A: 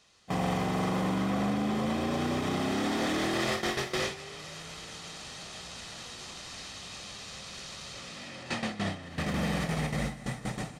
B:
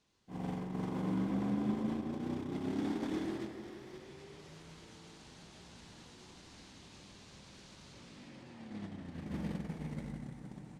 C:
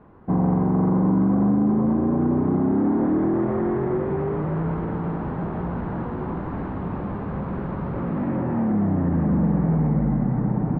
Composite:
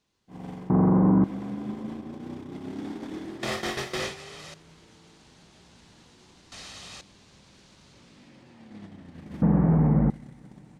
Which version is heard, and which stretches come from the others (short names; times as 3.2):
B
0.7–1.24 from C
3.43–4.54 from A
6.52–7.01 from A
9.42–10.1 from C